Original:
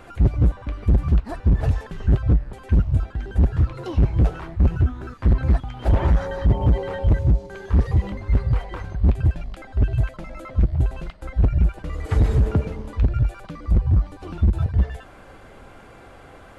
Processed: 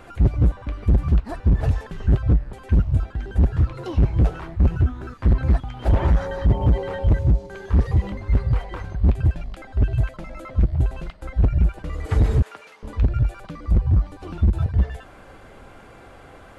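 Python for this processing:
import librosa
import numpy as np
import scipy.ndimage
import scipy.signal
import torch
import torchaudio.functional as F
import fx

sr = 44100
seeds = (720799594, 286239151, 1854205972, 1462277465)

y = fx.highpass(x, sr, hz=1300.0, slope=12, at=(12.42, 12.83))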